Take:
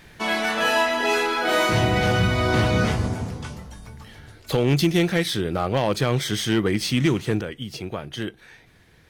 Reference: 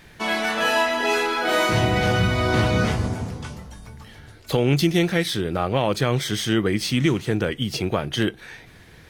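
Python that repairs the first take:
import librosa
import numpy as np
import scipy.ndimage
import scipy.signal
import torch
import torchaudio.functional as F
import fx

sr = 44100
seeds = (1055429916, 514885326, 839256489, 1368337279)

y = fx.fix_declip(x, sr, threshold_db=-12.0)
y = fx.fix_level(y, sr, at_s=7.41, step_db=7.5)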